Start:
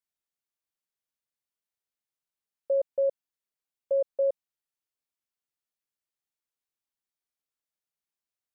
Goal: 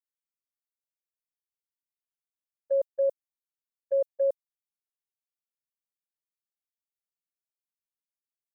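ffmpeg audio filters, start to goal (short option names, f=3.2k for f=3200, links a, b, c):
-af "crystalizer=i=4:c=0,agate=range=-24dB:threshold=-26dB:ratio=16:detection=peak"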